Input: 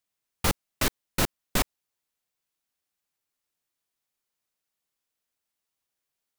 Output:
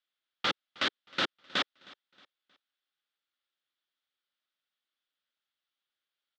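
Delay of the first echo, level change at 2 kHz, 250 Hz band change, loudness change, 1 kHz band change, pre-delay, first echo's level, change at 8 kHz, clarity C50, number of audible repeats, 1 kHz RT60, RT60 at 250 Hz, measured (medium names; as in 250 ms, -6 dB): 314 ms, 0.0 dB, -9.0 dB, -3.5 dB, -2.5 dB, no reverb, -23.0 dB, -18.5 dB, no reverb, 2, no reverb, no reverb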